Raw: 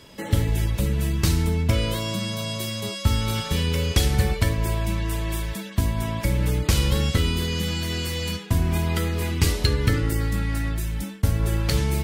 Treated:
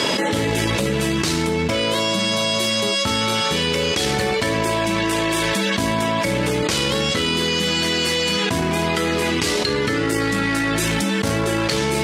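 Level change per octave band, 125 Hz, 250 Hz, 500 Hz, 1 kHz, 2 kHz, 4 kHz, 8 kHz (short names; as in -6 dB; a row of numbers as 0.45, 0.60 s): -4.0, +6.5, +10.0, +11.0, +10.5, +9.5, +7.0 dB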